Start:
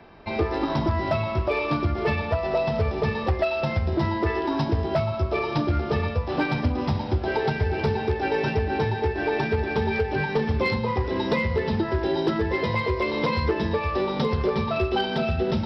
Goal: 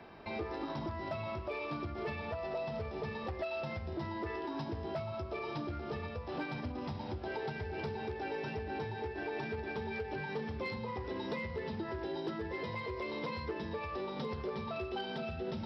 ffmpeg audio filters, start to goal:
ffmpeg -i in.wav -af "alimiter=level_in=3dB:limit=-24dB:level=0:latency=1:release=332,volume=-3dB,lowshelf=frequency=62:gain=-10.5,volume=-3.5dB" out.wav

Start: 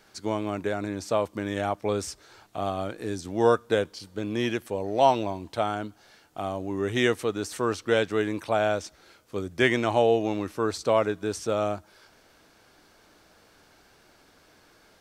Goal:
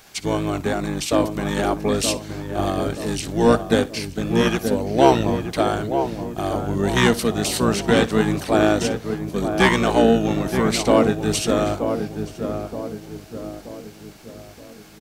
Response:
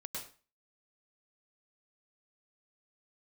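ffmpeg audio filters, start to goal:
-filter_complex "[0:a]acontrast=78,asplit=2[link_01][link_02];[link_02]adelay=926,lowpass=frequency=1100:poles=1,volume=-6dB,asplit=2[link_03][link_04];[link_04]adelay=926,lowpass=frequency=1100:poles=1,volume=0.51,asplit=2[link_05][link_06];[link_06]adelay=926,lowpass=frequency=1100:poles=1,volume=0.51,asplit=2[link_07][link_08];[link_08]adelay=926,lowpass=frequency=1100:poles=1,volume=0.51,asplit=2[link_09][link_10];[link_10]adelay=926,lowpass=frequency=1100:poles=1,volume=0.51,asplit=2[link_11][link_12];[link_12]adelay=926,lowpass=frequency=1100:poles=1,volume=0.51[link_13];[link_03][link_05][link_07][link_09][link_11][link_13]amix=inputs=6:normalize=0[link_14];[link_01][link_14]amix=inputs=2:normalize=0,crystalizer=i=2:c=0,asplit=2[link_15][link_16];[link_16]aecho=0:1:60|120:0.112|0.0202[link_17];[link_15][link_17]amix=inputs=2:normalize=0,asplit=2[link_18][link_19];[link_19]asetrate=22050,aresample=44100,atempo=2,volume=-1dB[link_20];[link_18][link_20]amix=inputs=2:normalize=0,volume=-3dB"

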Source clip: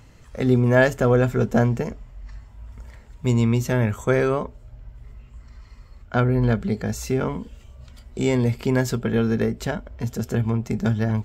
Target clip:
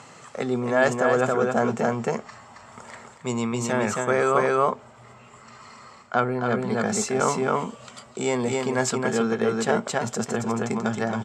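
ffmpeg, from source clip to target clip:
ffmpeg -i in.wav -af "aecho=1:1:272:0.596,areverse,acompressor=threshold=-26dB:ratio=6,areverse,highpass=frequency=170:width=0.5412,highpass=frequency=170:width=1.3066,equalizer=frequency=190:width_type=q:width=4:gain=-5,equalizer=frequency=290:width_type=q:width=4:gain=-9,equalizer=frequency=780:width_type=q:width=4:gain=6,equalizer=frequency=1200:width_type=q:width=4:gain=9,equalizer=frequency=7800:width_type=q:width=4:gain=8,lowpass=frequency=9300:width=0.5412,lowpass=frequency=9300:width=1.3066,volume=8.5dB" out.wav

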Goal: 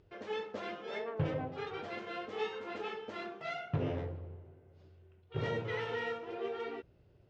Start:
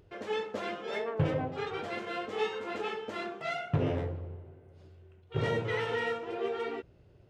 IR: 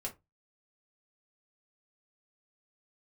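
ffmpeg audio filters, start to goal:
-af "lowpass=frequency=6400:width=0.5412,lowpass=frequency=6400:width=1.3066,volume=-5dB"

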